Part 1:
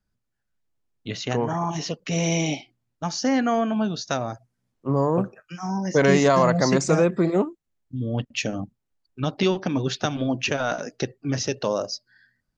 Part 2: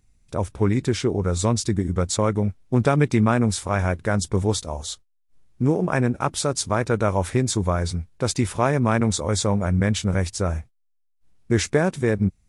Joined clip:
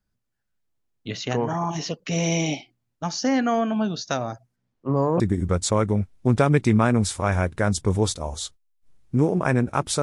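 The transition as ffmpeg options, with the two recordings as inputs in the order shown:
ffmpeg -i cue0.wav -i cue1.wav -filter_complex "[0:a]asettb=1/sr,asplit=3[link_01][link_02][link_03];[link_01]atrim=end=4.564[link_04];[link_02]atrim=start=4.56:end=5.2,asetpts=PTS-STARTPTS,afade=type=in:duration=0.004:curve=qsin,afade=type=out:start_time=0.636:duration=0.004:curve=qsin,adynamicsmooth=sensitivity=4:basefreq=6300[link_05];[link_03]atrim=start=5.196[link_06];[link_04][link_05]acrossfade=duration=0.004:curve1=hsin:curve2=qsin[link_07];[link_07][link_06]acrossfade=duration=0.004:curve1=qsin:curve2=hsin,apad=whole_dur=10.02,atrim=end=10.02,atrim=end=5.202[link_08];[1:a]atrim=start=1.668:end=6.49[link_09];[link_08][link_09]acrossfade=duration=0.004:curve1=hsin:curve2=hsin" out.wav

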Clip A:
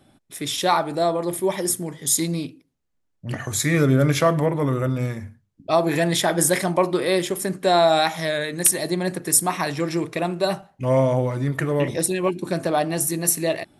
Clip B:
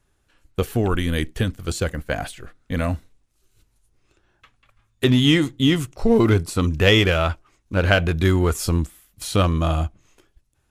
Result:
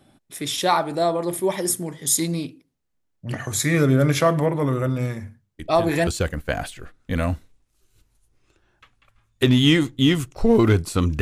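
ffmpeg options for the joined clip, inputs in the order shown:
ffmpeg -i cue0.wav -i cue1.wav -filter_complex "[1:a]asplit=2[link_01][link_02];[0:a]apad=whole_dur=11.21,atrim=end=11.21,atrim=end=6.072[link_03];[link_02]atrim=start=1.678:end=6.82[link_04];[link_01]atrim=start=1.2:end=1.68,asetpts=PTS-STARTPTS,volume=-10.5dB,afade=type=in:duration=0.004:curve=hsin,afade=type=out:start_time=0.476:duration=0.004:curve=hsin,adelay=5590[link_05];[link_03][link_04]acrossfade=duration=0.004:curve1=hsin:curve2=hsin[link_06];[link_06][link_05]amix=inputs=2:normalize=0" out.wav

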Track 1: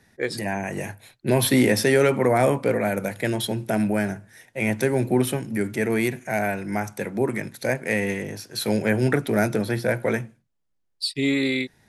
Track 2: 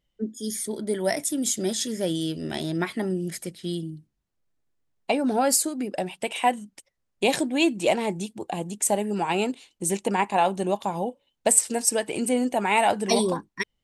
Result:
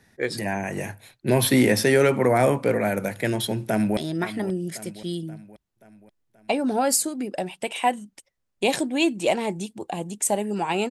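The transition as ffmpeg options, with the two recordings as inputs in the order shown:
ffmpeg -i cue0.wav -i cue1.wav -filter_complex "[0:a]apad=whole_dur=10.9,atrim=end=10.9,atrim=end=3.972[link_01];[1:a]atrim=start=2.568:end=9.5[link_02];[link_01][link_02]acrossfade=duration=0.004:curve1=hsin:curve2=hsin,asplit=2[link_03][link_04];[link_04]afade=type=in:start_time=3.64:duration=0.01,afade=type=out:start_time=3.97:duration=0.01,aecho=0:1:530|1060|1590|2120|2650|3180:0.211349|0.116242|0.063933|0.0351632|0.0193397|0.0106369[link_05];[link_03][link_05]amix=inputs=2:normalize=0" out.wav

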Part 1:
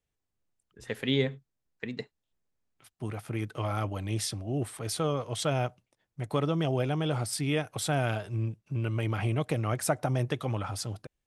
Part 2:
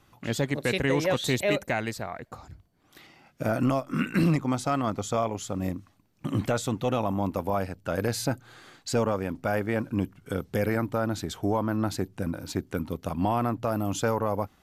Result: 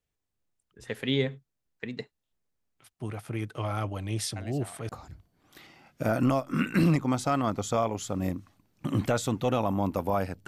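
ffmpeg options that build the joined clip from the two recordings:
ffmpeg -i cue0.wav -i cue1.wav -filter_complex "[1:a]asplit=2[link_01][link_02];[0:a]apad=whole_dur=10.47,atrim=end=10.47,atrim=end=4.892[link_03];[link_02]atrim=start=2.288:end=7.87[link_04];[link_01]atrim=start=1.76:end=2.29,asetpts=PTS-STARTPTS,volume=-12.5dB,afade=type=in:duration=0.004:curve=hsin,afade=type=out:start_time=0.526:duration=0.004:curve=hsin,adelay=4360[link_05];[link_03][link_04]acrossfade=duration=0.004:curve1=hsin:curve2=hsin[link_06];[link_06][link_05]amix=inputs=2:normalize=0" out.wav

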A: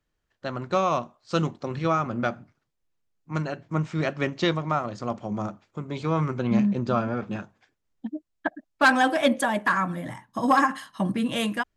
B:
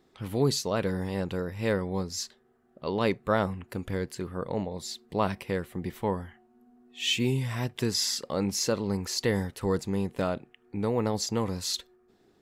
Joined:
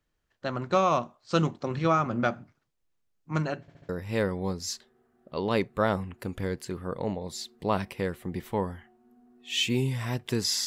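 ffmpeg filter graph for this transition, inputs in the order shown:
ffmpeg -i cue0.wav -i cue1.wav -filter_complex "[0:a]apad=whole_dur=10.66,atrim=end=10.66,asplit=4[link_01][link_02][link_03][link_04];[link_01]atrim=end=3.682[link_05];[link_02]atrim=start=3.608:end=3.682[link_06];[link_03]atrim=start=3.608:end=3.682[link_07];[link_04]atrim=start=3.608:end=3.682[link_08];[1:a]atrim=start=1.388:end=8.16[link_09];[link_05][link_06]acrossfade=duration=0.004:curve1=hsin:curve2=hsin[link_10];[link_10][link_07]acrossfade=duration=0.004:curve1=hsin:curve2=hsin[link_11];[link_11][link_08]acrossfade=duration=0.004:curve1=hsin:curve2=hsin[link_12];[link_12][link_09]acrossfade=duration=0.004:curve1=hsin:curve2=hsin" out.wav

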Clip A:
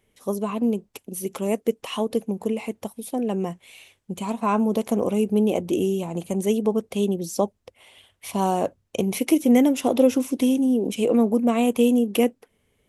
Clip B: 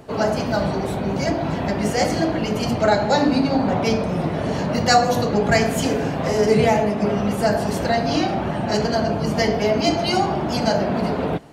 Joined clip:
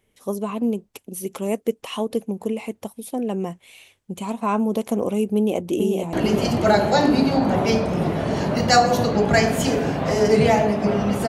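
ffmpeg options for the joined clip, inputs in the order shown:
ffmpeg -i cue0.wav -i cue1.wav -filter_complex "[0:a]apad=whole_dur=11.28,atrim=end=11.28,atrim=end=6.132[link_01];[1:a]atrim=start=2.308:end=7.46[link_02];[link_01][link_02]acrossfade=duration=0.004:curve1=hsin:curve2=hsin,asplit=2[link_03][link_04];[link_04]afade=type=in:start_time=5.35:duration=0.01,afade=type=out:start_time=6.13:duration=0.01,aecho=0:1:440|880|1320|1760|2200|2640|3080|3520|3960|4400|4840|5280:0.562341|0.449873|0.359898|0.287919|0.230335|0.184268|0.147414|0.117932|0.0943452|0.0754762|0.0603809|0.0483048[link_05];[link_03][link_05]amix=inputs=2:normalize=0" out.wav

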